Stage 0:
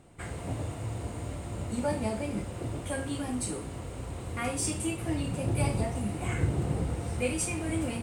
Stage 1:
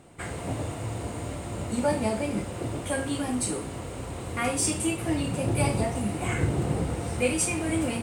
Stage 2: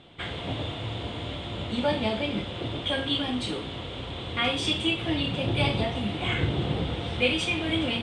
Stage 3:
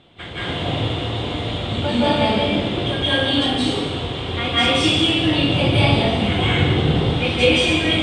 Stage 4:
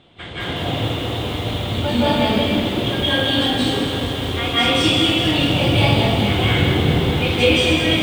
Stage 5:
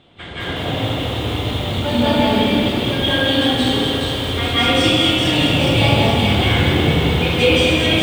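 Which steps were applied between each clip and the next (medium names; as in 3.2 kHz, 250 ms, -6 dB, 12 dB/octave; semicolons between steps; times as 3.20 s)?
bass shelf 99 Hz -8.5 dB; trim +5.5 dB
resonant low-pass 3.4 kHz, resonance Q 10; trim -1 dB
reverberation RT60 1.2 s, pre-delay 158 ms, DRR -9 dB
bit-crushed delay 208 ms, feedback 80%, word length 6-bit, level -9 dB
two-band feedback delay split 2.2 kHz, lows 83 ms, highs 418 ms, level -4.5 dB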